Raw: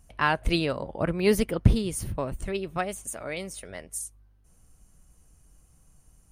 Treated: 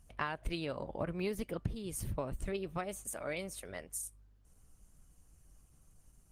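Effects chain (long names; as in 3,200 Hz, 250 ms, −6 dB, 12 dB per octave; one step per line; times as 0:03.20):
downward compressor 12 to 1, threshold −28 dBFS, peak gain reduction 18 dB
tuned comb filter 590 Hz, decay 0.18 s, harmonics all, mix 40%
Opus 16 kbit/s 48,000 Hz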